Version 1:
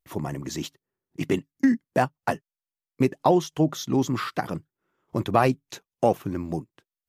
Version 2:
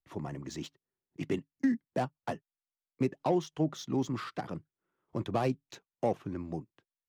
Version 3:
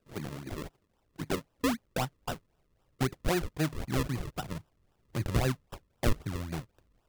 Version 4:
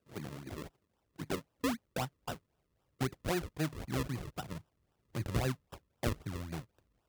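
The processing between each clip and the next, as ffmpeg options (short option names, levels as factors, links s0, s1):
-filter_complex "[0:a]acrossover=split=210|720|4200[s0][s1][s2][s3];[s2]asoftclip=type=tanh:threshold=0.0422[s4];[s0][s1][s4][s3]amix=inputs=4:normalize=0,adynamicsmooth=sensitivity=7:basefreq=5400,volume=0.398"
-af "aexciter=amount=11.2:drive=5.5:freq=7700,acrusher=samples=40:mix=1:aa=0.000001:lfo=1:lforange=40:lforate=3.8,asubboost=boost=4:cutoff=120"
-af "highpass=48,volume=0.596"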